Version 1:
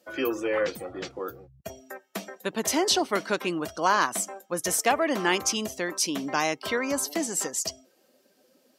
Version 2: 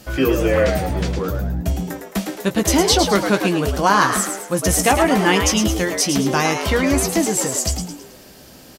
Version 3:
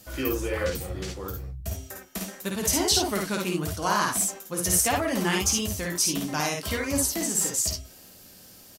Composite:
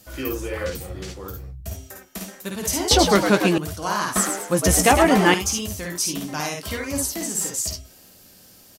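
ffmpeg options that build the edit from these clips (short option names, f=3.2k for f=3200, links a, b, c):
-filter_complex "[1:a]asplit=2[a][b];[2:a]asplit=3[c][d][e];[c]atrim=end=2.912[f];[a]atrim=start=2.908:end=3.582[g];[d]atrim=start=3.578:end=4.162[h];[b]atrim=start=4.158:end=5.342[i];[e]atrim=start=5.338[j];[f][g]acrossfade=d=0.004:c1=hsin:c2=hsin[k];[k][h]acrossfade=d=0.004:c1=hsin:c2=hsin[l];[l][i]acrossfade=d=0.004:c1=hsin:c2=hsin[m];[m][j]acrossfade=d=0.004:c1=hsin:c2=hsin"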